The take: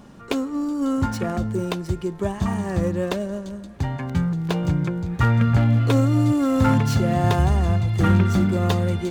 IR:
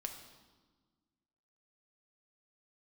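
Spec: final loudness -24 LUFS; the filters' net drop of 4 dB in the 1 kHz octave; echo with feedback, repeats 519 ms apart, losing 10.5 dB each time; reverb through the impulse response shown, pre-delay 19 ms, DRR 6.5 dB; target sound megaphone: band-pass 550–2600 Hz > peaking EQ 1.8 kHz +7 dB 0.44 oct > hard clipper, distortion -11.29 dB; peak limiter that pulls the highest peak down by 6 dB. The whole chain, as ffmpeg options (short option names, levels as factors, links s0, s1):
-filter_complex "[0:a]equalizer=f=1000:t=o:g=-6,alimiter=limit=0.224:level=0:latency=1,aecho=1:1:519|1038|1557:0.299|0.0896|0.0269,asplit=2[s0][s1];[1:a]atrim=start_sample=2205,adelay=19[s2];[s1][s2]afir=irnorm=-1:irlink=0,volume=0.562[s3];[s0][s3]amix=inputs=2:normalize=0,highpass=550,lowpass=2600,equalizer=f=1800:t=o:w=0.44:g=7,asoftclip=type=hard:threshold=0.0376,volume=3.16"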